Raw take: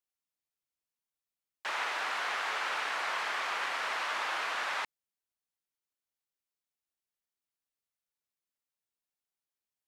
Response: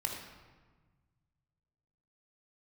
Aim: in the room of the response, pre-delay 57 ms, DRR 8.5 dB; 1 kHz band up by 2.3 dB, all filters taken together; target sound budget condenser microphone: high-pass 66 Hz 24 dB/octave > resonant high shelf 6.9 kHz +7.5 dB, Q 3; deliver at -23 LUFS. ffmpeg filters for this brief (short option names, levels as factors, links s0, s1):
-filter_complex "[0:a]equalizer=f=1000:t=o:g=3,asplit=2[s0][s1];[1:a]atrim=start_sample=2205,adelay=57[s2];[s1][s2]afir=irnorm=-1:irlink=0,volume=0.282[s3];[s0][s3]amix=inputs=2:normalize=0,highpass=f=66:w=0.5412,highpass=f=66:w=1.3066,highshelf=f=6900:t=q:w=3:g=7.5,volume=2.66"